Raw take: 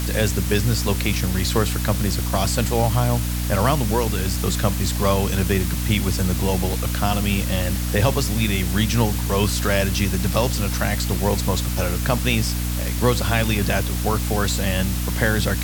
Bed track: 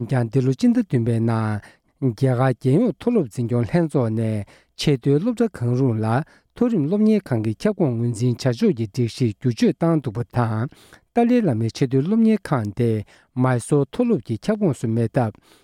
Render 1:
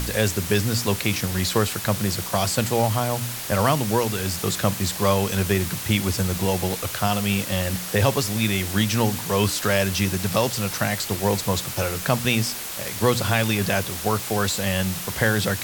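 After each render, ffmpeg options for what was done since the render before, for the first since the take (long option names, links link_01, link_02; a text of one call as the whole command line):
ffmpeg -i in.wav -af "bandreject=frequency=60:width_type=h:width=4,bandreject=frequency=120:width_type=h:width=4,bandreject=frequency=180:width_type=h:width=4,bandreject=frequency=240:width_type=h:width=4,bandreject=frequency=300:width_type=h:width=4" out.wav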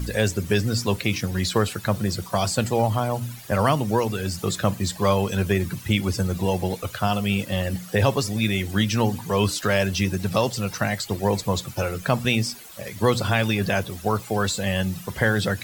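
ffmpeg -i in.wav -af "afftdn=noise_reduction=15:noise_floor=-32" out.wav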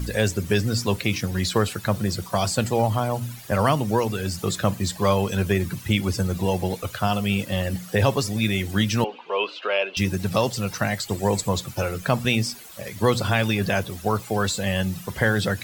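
ffmpeg -i in.wav -filter_complex "[0:a]asettb=1/sr,asplit=3[link_01][link_02][link_03];[link_01]atrim=end=9.044[link_04];[link_02]atrim=start=9.04:end=9.97,asetpts=PTS-STARTPTS,afade=type=in:duration=0.004:curve=qsin,afade=type=out:start_time=0.926:duration=0.004:curve=qsin,highpass=frequency=410:width=0.5412,highpass=frequency=410:width=1.3066,equalizer=frequency=760:width_type=q:width=4:gain=-3,equalizer=frequency=1800:width_type=q:width=4:gain=-10,equalizer=frequency=2700:width_type=q:width=4:gain=8,lowpass=frequency=3200:width=0.5412,lowpass=frequency=3200:width=1.3066[link_05];[link_03]atrim=start=9.966[link_06];[link_04][link_05]acrossfade=duration=0.004:curve1=hsin:curve2=qsin[link_07];[link_07][link_06]acrossfade=duration=0.004:curve1=qsin:curve2=hsin,asettb=1/sr,asplit=3[link_08][link_09][link_10];[link_08]atrim=end=11.084[link_11];[link_09]atrim=start=11.08:end=11.49,asetpts=PTS-STARTPTS,afade=type=in:duration=0.004:curve=qsin,afade=type=out:start_time=0.406:duration=0.004:curve=qsin,equalizer=frequency=7700:width_type=o:width=0.25:gain=10[link_12];[link_10]atrim=start=11.486[link_13];[link_11][link_12]acrossfade=duration=0.004:curve1=hsin:curve2=qsin[link_14];[link_14][link_13]acrossfade=duration=0.004:curve1=qsin:curve2=hsin" out.wav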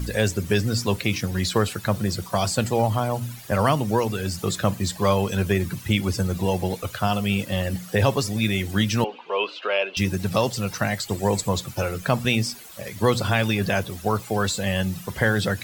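ffmpeg -i in.wav -af anull out.wav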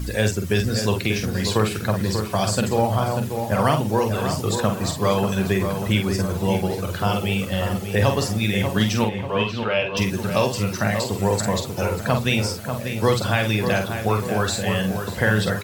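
ffmpeg -i in.wav -filter_complex "[0:a]asplit=2[link_01][link_02];[link_02]adelay=47,volume=-6dB[link_03];[link_01][link_03]amix=inputs=2:normalize=0,asplit=2[link_04][link_05];[link_05]adelay=590,lowpass=frequency=2000:poles=1,volume=-6.5dB,asplit=2[link_06][link_07];[link_07]adelay=590,lowpass=frequency=2000:poles=1,volume=0.5,asplit=2[link_08][link_09];[link_09]adelay=590,lowpass=frequency=2000:poles=1,volume=0.5,asplit=2[link_10][link_11];[link_11]adelay=590,lowpass=frequency=2000:poles=1,volume=0.5,asplit=2[link_12][link_13];[link_13]adelay=590,lowpass=frequency=2000:poles=1,volume=0.5,asplit=2[link_14][link_15];[link_15]adelay=590,lowpass=frequency=2000:poles=1,volume=0.5[link_16];[link_04][link_06][link_08][link_10][link_12][link_14][link_16]amix=inputs=7:normalize=0" out.wav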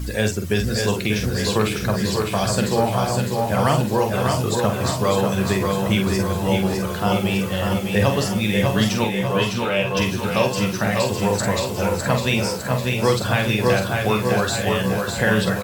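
ffmpeg -i in.wav -filter_complex "[0:a]asplit=2[link_01][link_02];[link_02]adelay=14,volume=-13dB[link_03];[link_01][link_03]amix=inputs=2:normalize=0,asplit=2[link_04][link_05];[link_05]aecho=0:1:606|1212|1818|2424|3030|3636|4242:0.562|0.304|0.164|0.0885|0.0478|0.0258|0.0139[link_06];[link_04][link_06]amix=inputs=2:normalize=0" out.wav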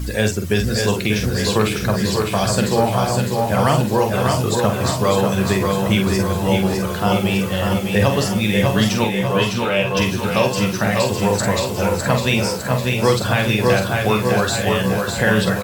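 ffmpeg -i in.wav -af "volume=2.5dB,alimiter=limit=-3dB:level=0:latency=1" out.wav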